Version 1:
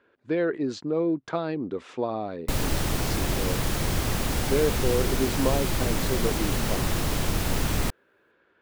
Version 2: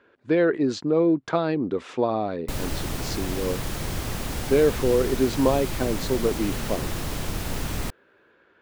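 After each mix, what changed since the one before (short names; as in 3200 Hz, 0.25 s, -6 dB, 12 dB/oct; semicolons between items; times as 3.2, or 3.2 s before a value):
speech +5.0 dB; background -3.5 dB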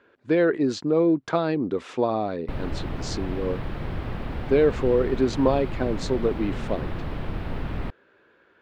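background: add air absorption 440 m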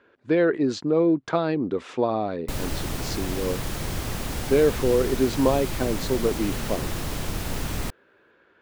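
background: remove air absorption 440 m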